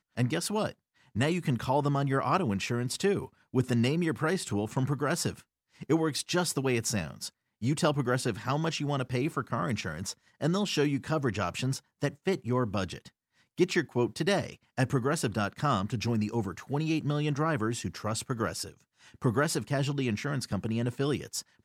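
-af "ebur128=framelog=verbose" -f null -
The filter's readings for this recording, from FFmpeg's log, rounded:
Integrated loudness:
  I:         -30.4 LUFS
  Threshold: -40.6 LUFS
Loudness range:
  LRA:         2.1 LU
  Threshold: -50.6 LUFS
  LRA low:   -31.5 LUFS
  LRA high:  -29.4 LUFS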